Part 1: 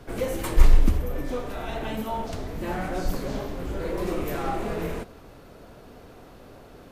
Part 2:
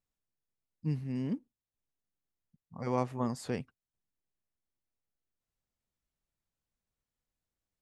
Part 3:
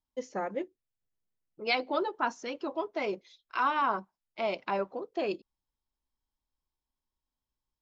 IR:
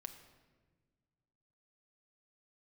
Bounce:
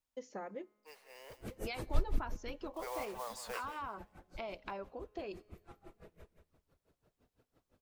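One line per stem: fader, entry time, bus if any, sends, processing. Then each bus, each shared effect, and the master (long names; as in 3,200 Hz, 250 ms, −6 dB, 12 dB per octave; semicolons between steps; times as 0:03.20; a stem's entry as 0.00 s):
0:02.12 −10.5 dB → 0:02.66 −23 dB, 1.30 s, send −11 dB, echo send −7.5 dB, reverb reduction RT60 0.61 s; parametric band 76 Hz +8 dB 1.2 octaves; tremolo with a sine in dB 5.9 Hz, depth 30 dB
−1.0 dB, 0.00 s, no send, echo send −13 dB, Butterworth high-pass 500 Hz 48 dB per octave; brickwall limiter −31.5 dBFS, peak gain reduction 10.5 dB; noise that follows the level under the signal 11 dB
−0.5 dB, 0.00 s, send −22.5 dB, no echo send, downward compressor 4 to 1, threshold −37 dBFS, peak gain reduction 12 dB; tuned comb filter 210 Hz, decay 1.5 s, mix 40%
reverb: on, RT60 1.5 s, pre-delay 6 ms
echo: repeating echo 178 ms, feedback 26%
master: no processing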